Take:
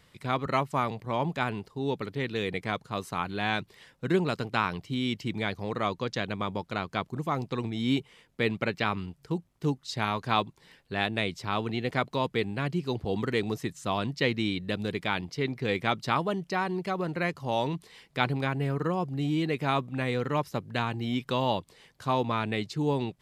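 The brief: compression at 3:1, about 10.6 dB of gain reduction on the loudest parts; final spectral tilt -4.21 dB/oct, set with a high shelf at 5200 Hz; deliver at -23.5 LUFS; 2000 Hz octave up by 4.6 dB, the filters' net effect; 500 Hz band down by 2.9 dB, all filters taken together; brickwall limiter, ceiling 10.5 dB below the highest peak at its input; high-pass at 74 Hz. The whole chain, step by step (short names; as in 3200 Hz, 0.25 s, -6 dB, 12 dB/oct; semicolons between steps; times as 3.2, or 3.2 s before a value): HPF 74 Hz; bell 500 Hz -4 dB; bell 2000 Hz +5.5 dB; high shelf 5200 Hz +3 dB; compressor 3:1, threshold -34 dBFS; gain +16 dB; limiter -10 dBFS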